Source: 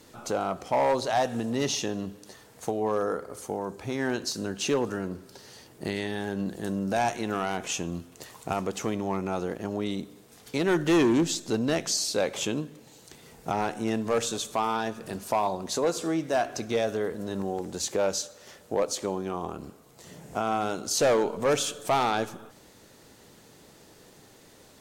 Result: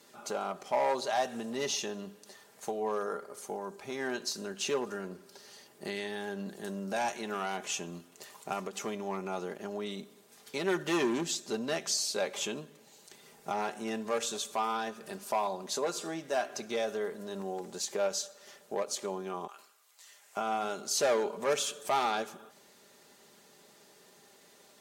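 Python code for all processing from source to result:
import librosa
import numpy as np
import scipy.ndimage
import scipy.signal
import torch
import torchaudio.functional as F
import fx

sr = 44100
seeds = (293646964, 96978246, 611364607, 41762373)

y = fx.chain(x, sr, fx.highpass(hz=1400.0, slope=12),
    fx.sustainer(db_per_s=88.0), at=(19.47, 20.37))
y = fx.highpass(y, sr, hz=420.0, slope=6)
y = y + 0.52 * np.pad(y, (int(5.0 * sr / 1000.0), 0))[:len(y)]
y = fx.end_taper(y, sr, db_per_s=310.0)
y = y * librosa.db_to_amplitude(-4.5)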